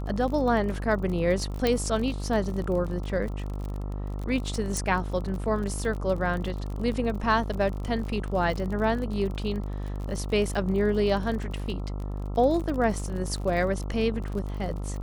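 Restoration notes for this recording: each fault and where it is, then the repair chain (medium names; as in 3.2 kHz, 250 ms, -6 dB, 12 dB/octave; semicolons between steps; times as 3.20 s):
buzz 50 Hz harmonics 27 -32 dBFS
crackle 38 per s -33 dBFS
1.67 s: pop -11 dBFS
4.77 s: pop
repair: de-click; de-hum 50 Hz, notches 27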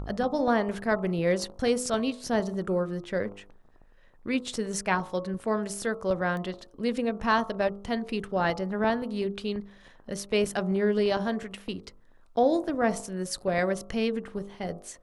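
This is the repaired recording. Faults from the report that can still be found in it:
4.77 s: pop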